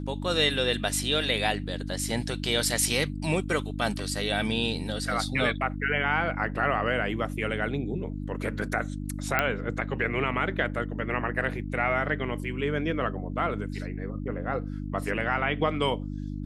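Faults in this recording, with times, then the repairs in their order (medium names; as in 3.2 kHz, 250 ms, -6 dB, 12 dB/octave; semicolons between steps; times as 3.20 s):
hum 50 Hz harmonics 6 -34 dBFS
9.39 s: pop -9 dBFS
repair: de-click; de-hum 50 Hz, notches 6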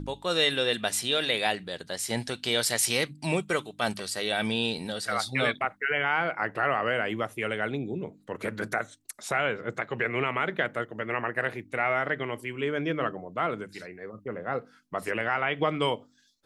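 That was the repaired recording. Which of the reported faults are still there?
nothing left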